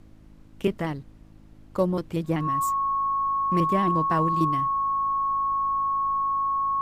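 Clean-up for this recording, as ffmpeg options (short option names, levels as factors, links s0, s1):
-af "bandreject=f=52.9:t=h:w=4,bandreject=f=105.8:t=h:w=4,bandreject=f=158.7:t=h:w=4,bandreject=f=211.6:t=h:w=4,bandreject=f=264.5:t=h:w=4,bandreject=f=317.4:t=h:w=4,bandreject=f=1100:w=30,agate=range=0.0891:threshold=0.00891"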